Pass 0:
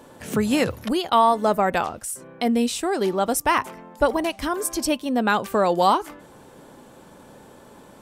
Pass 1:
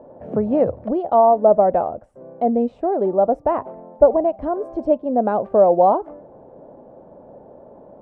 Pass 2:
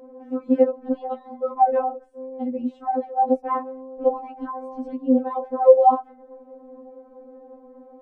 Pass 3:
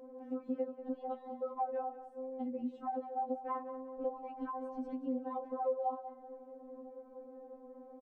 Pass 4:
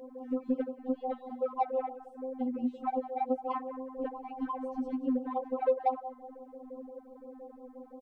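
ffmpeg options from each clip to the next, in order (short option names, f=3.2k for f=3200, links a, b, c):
-af "lowpass=f=640:t=q:w=3.6,volume=-1dB"
-af "afftfilt=real='re*3.46*eq(mod(b,12),0)':imag='im*3.46*eq(mod(b,12),0)':win_size=2048:overlap=0.75"
-af "acompressor=threshold=-30dB:ratio=3,aecho=1:1:189|378|567|756:0.224|0.0895|0.0358|0.0143,volume=-7dB"
-af "aeval=exprs='0.0562*(cos(1*acos(clip(val(0)/0.0562,-1,1)))-cos(1*PI/2))+0.00316*(cos(3*acos(clip(val(0)/0.0562,-1,1)))-cos(3*PI/2))+0.000501*(cos(7*acos(clip(val(0)/0.0562,-1,1)))-cos(7*PI/2))':c=same,afftfilt=real='re*(1-between(b*sr/1024,480*pow(2000/480,0.5+0.5*sin(2*PI*5.8*pts/sr))/1.41,480*pow(2000/480,0.5+0.5*sin(2*PI*5.8*pts/sr))*1.41))':imag='im*(1-between(b*sr/1024,480*pow(2000/480,0.5+0.5*sin(2*PI*5.8*pts/sr))/1.41,480*pow(2000/480,0.5+0.5*sin(2*PI*5.8*pts/sr))*1.41))':win_size=1024:overlap=0.75,volume=8dB"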